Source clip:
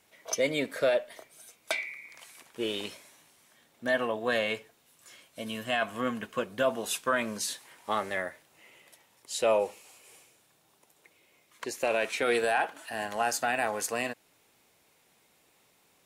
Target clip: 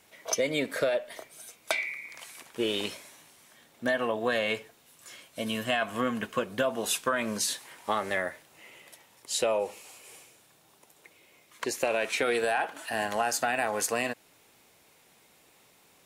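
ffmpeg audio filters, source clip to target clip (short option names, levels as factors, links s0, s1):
-af "acompressor=threshold=0.0355:ratio=5,volume=1.78"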